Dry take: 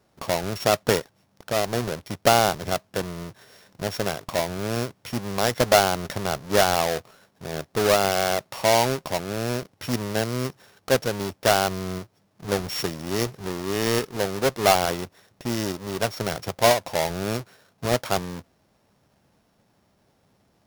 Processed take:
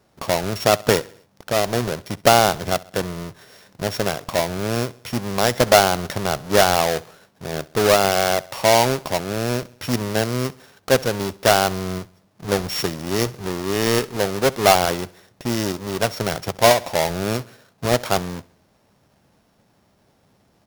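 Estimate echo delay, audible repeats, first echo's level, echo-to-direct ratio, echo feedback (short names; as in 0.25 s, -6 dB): 66 ms, 3, -22.0 dB, -20.5 dB, 53%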